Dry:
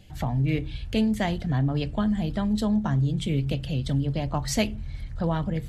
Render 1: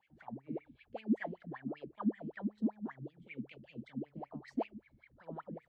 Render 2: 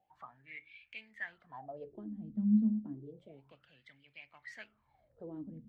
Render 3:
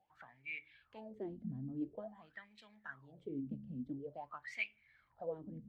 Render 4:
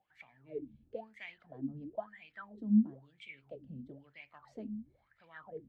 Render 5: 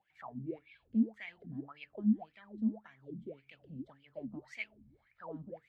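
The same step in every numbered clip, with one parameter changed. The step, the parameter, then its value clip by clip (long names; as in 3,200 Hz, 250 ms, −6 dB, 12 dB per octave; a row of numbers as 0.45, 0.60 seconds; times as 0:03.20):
LFO wah, speed: 5.2, 0.3, 0.48, 1, 1.8 Hertz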